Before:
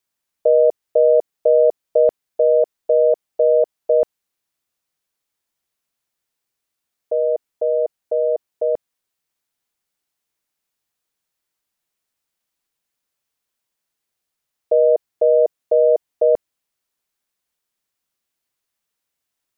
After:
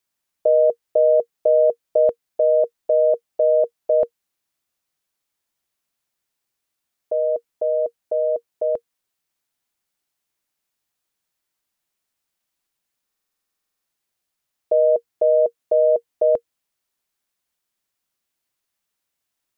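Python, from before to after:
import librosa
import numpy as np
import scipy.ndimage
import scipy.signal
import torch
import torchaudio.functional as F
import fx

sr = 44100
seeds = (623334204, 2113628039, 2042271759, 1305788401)

y = fx.notch(x, sr, hz=470.0, q=15.0)
y = fx.buffer_glitch(y, sr, at_s=(13.05,), block=2048, repeats=16)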